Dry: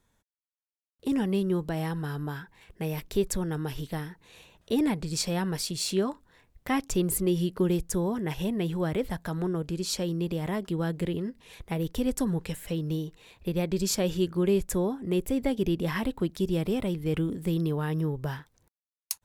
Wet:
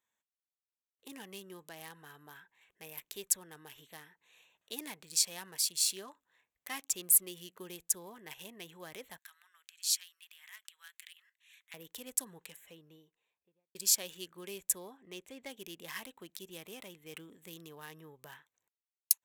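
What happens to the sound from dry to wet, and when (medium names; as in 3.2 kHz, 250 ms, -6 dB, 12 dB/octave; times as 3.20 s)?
9.18–11.74 s: high-pass 1.5 kHz 24 dB/octave
12.29–13.75 s: studio fade out
14.97–15.50 s: low-pass 6.1 kHz
whole clip: local Wiener filter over 9 samples; differentiator; band-stop 1.4 kHz, Q 12; trim +4 dB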